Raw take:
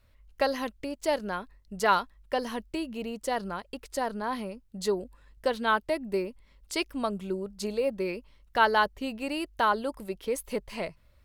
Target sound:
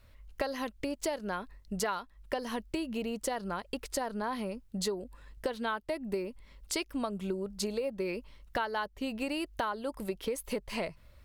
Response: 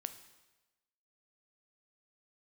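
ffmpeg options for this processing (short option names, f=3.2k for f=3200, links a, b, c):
-af "acompressor=threshold=-35dB:ratio=8,volume=4.5dB"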